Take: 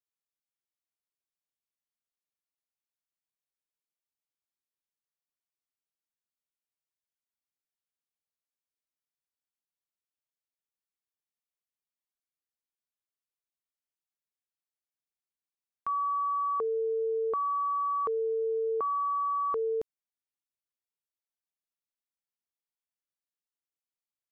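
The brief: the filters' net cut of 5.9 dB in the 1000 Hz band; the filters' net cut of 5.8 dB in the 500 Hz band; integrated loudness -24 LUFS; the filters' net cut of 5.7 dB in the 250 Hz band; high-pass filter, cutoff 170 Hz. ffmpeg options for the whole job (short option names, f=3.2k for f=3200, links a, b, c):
-af "highpass=170,equalizer=f=250:t=o:g=-5,equalizer=f=500:t=o:g=-4,equalizer=f=1k:t=o:g=-6,volume=12dB"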